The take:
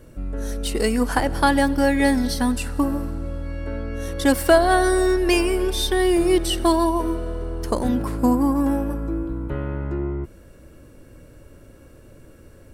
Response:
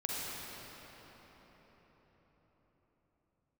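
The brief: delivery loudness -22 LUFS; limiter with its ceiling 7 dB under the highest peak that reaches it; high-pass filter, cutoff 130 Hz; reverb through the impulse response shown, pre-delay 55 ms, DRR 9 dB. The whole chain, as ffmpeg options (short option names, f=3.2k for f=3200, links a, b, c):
-filter_complex "[0:a]highpass=130,alimiter=limit=-10.5dB:level=0:latency=1,asplit=2[a][b];[1:a]atrim=start_sample=2205,adelay=55[c];[b][c]afir=irnorm=-1:irlink=0,volume=-14dB[d];[a][d]amix=inputs=2:normalize=0,volume=0.5dB"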